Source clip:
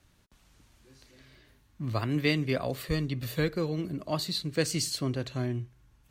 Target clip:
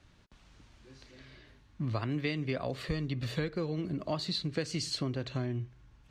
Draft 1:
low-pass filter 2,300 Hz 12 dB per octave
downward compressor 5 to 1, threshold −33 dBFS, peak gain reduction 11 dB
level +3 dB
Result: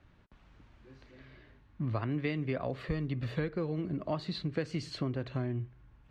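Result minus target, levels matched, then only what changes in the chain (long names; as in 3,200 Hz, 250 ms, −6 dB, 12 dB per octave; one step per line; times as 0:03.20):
4,000 Hz band −7.0 dB
change: low-pass filter 5,300 Hz 12 dB per octave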